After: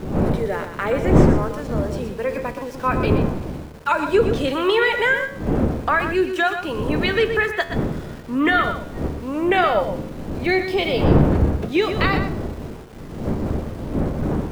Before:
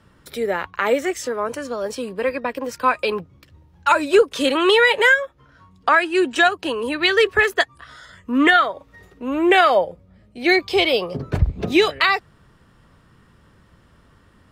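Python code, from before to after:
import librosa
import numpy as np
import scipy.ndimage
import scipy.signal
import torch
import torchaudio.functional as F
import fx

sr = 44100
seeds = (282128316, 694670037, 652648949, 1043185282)

p1 = fx.dmg_wind(x, sr, seeds[0], corner_hz=310.0, level_db=-21.0)
p2 = fx.high_shelf(p1, sr, hz=3900.0, db=-10.0)
p3 = np.where(np.abs(p2) >= 10.0 ** (-35.5 / 20.0), p2, 0.0)
p4 = fx.comb_fb(p3, sr, f0_hz=75.0, decay_s=0.73, harmonics='all', damping=0.0, mix_pct=60)
p5 = p4 + fx.echo_single(p4, sr, ms=122, db=-9.0, dry=0)
y = F.gain(torch.from_numpy(p5), 3.5).numpy()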